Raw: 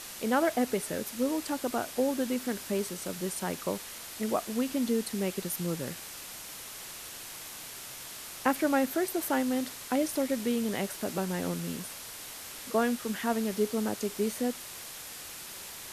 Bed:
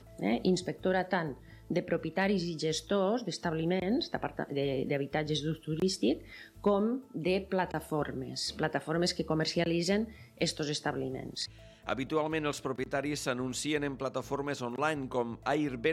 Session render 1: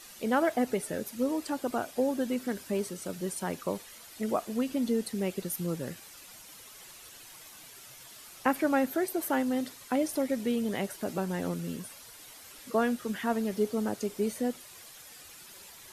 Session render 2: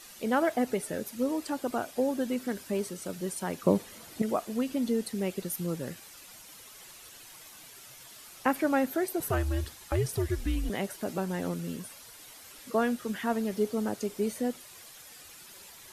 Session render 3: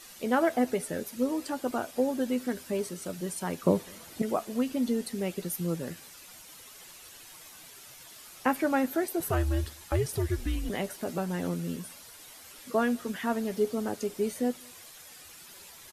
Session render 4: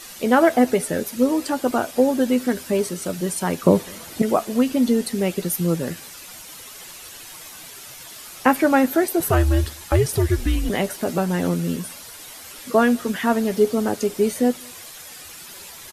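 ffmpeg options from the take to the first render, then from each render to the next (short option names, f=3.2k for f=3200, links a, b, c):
-af "afftdn=nr=10:nf=-44"
-filter_complex "[0:a]asettb=1/sr,asplit=3[a][b][c];[a]atrim=end=3.634[d];[b]atrim=start=3.63:end=4.22,asetpts=PTS-STARTPTS,afade=t=in:d=0.004:c=qsin,afade=t=out:st=0.586:d=0.004:c=qsin,equalizer=f=190:w=0.32:g=12[e];[c]atrim=start=4.216[f];[d][e]acrossfade=d=0.004:c1=hsin:c2=qsin[g];[g][f]acrossfade=d=0.004:c1=qsin:c2=hsin,asettb=1/sr,asplit=3[h][i][j];[h]atrim=end=9.204[k];[i]atrim=start=9.2:end=10.7,asetpts=PTS-STARTPTS,afade=t=in:d=0.004:c=qsin,afade=t=out:st=1.496:d=0.004:c=qsin,afreqshift=-180[l];[j]atrim=start=10.696[m];[k][l]acrossfade=d=0.004:c1=hsin:c2=qsin[n];[n][m]acrossfade=d=0.004:c1=qsin:c2=hsin"
-filter_complex "[0:a]asplit=2[a][b];[b]adelay=12,volume=-10.5dB[c];[a][c]amix=inputs=2:normalize=0,asplit=2[d][e];[e]adelay=204.1,volume=-29dB,highshelf=f=4k:g=-4.59[f];[d][f]amix=inputs=2:normalize=0"
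-af "volume=10dB,alimiter=limit=-3dB:level=0:latency=1"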